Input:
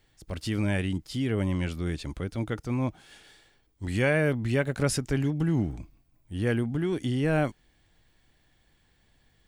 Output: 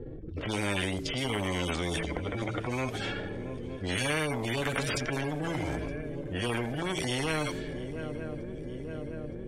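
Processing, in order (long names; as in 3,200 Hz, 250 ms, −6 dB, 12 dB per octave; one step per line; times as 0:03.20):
harmonic-percussive split with one part muted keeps harmonic
low shelf with overshoot 610 Hz +8 dB, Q 3
hum removal 54.82 Hz, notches 8
low-pass that shuts in the quiet parts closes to 570 Hz, open at −18 dBFS
downward compressor 2 to 1, threshold −28 dBFS, peak gain reduction 9 dB
transient designer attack −2 dB, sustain +5 dB
on a send: feedback echo with a long and a short gap by turns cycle 916 ms, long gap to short 3 to 1, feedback 54%, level −24 dB
on the sum: every bin compressed towards the loudest bin 4 to 1
level +1.5 dB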